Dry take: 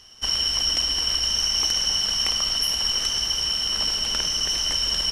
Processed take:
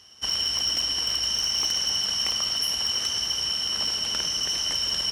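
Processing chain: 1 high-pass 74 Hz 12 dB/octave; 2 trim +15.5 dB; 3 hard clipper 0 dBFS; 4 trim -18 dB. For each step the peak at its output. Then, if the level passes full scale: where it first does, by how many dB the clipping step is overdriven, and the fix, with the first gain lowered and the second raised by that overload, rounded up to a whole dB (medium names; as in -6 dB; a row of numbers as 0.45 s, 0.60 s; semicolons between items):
-8.0 dBFS, +7.5 dBFS, 0.0 dBFS, -18.0 dBFS; step 2, 7.5 dB; step 2 +7.5 dB, step 4 -10 dB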